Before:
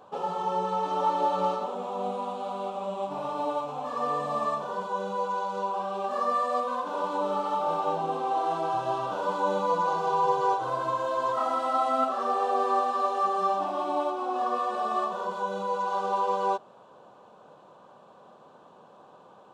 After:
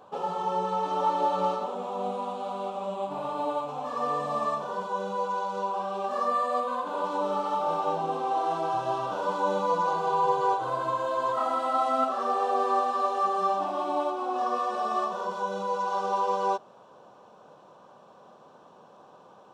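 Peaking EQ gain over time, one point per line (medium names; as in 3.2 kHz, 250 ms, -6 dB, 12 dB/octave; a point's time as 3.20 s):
peaking EQ 5.6 kHz 0.21 oct
+0.5 dB
from 2.95 s -7 dB
from 3.69 s +2.5 dB
from 6.28 s -8 dB
from 7.05 s +3 dB
from 9.91 s -4.5 dB
from 11.78 s +2 dB
from 14.38 s +8.5 dB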